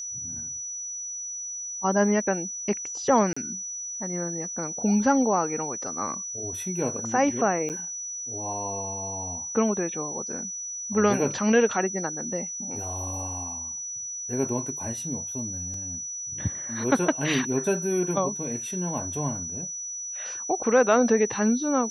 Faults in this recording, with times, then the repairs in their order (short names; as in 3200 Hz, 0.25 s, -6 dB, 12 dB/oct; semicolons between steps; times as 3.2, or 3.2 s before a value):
tone 5900 Hz -32 dBFS
3.33–3.37 gap 35 ms
7.69–7.7 gap 8.6 ms
15.74 gap 2.1 ms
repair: notch 5900 Hz, Q 30; interpolate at 3.33, 35 ms; interpolate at 7.69, 8.6 ms; interpolate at 15.74, 2.1 ms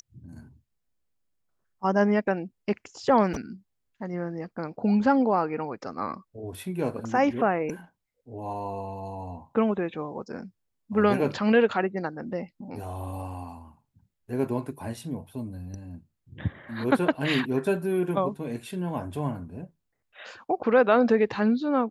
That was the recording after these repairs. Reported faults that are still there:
none